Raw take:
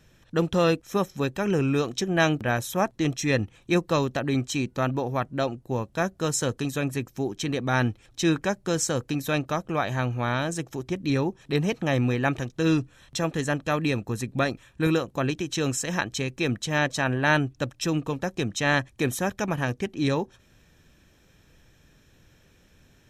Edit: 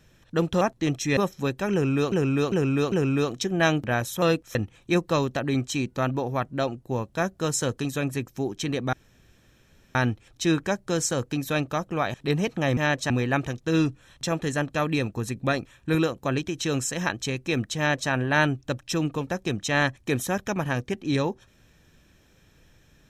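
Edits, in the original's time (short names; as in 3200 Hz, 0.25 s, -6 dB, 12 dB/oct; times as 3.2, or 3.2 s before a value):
0.61–0.94 swap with 2.79–3.35
1.49–1.89 loop, 4 plays
7.73 insert room tone 1.02 s
9.92–11.39 cut
16.69–17.02 copy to 12.02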